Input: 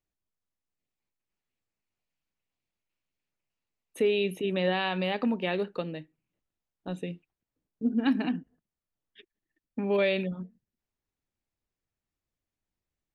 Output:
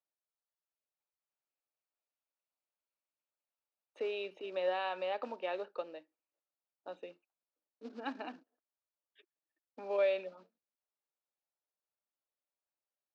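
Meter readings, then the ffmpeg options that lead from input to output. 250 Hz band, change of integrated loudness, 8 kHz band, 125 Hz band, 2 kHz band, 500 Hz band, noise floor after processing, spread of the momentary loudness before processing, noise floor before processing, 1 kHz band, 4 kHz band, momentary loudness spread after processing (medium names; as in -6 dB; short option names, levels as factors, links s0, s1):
-20.5 dB, -8.5 dB, no reading, under -30 dB, -10.5 dB, -6.5 dB, under -85 dBFS, 15 LU, under -85 dBFS, -4.5 dB, -11.5 dB, 19 LU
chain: -af "acrusher=bits=6:mode=log:mix=0:aa=0.000001,highpass=f=360:w=0.5412,highpass=f=360:w=1.3066,equalizer=f=400:t=q:w=4:g=-4,equalizer=f=590:t=q:w=4:g=6,equalizer=f=870:t=q:w=4:g=4,equalizer=f=1300:t=q:w=4:g=4,equalizer=f=2000:t=q:w=4:g=-6,equalizer=f=3300:t=q:w=4:g=-6,lowpass=f=4500:w=0.5412,lowpass=f=4500:w=1.3066,volume=0.398"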